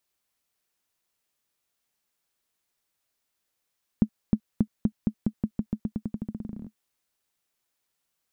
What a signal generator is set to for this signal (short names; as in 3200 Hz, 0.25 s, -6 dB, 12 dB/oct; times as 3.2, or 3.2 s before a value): bouncing ball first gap 0.31 s, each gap 0.89, 215 Hz, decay 70 ms -8.5 dBFS